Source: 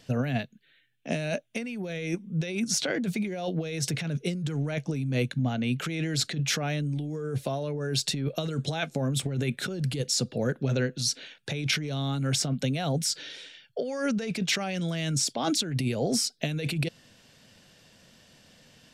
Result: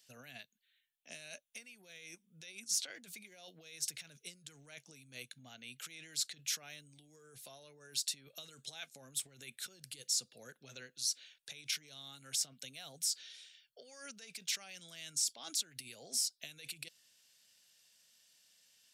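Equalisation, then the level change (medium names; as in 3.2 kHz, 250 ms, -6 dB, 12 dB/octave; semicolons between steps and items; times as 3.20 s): pre-emphasis filter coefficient 0.97; -4.5 dB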